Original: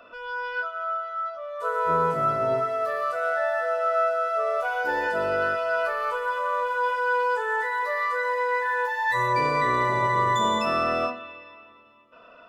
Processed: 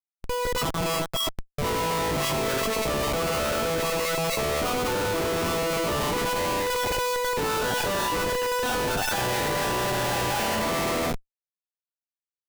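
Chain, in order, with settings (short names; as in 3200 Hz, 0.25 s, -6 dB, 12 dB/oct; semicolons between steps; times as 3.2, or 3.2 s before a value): Schmitt trigger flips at -29.5 dBFS; formant shift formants -3 st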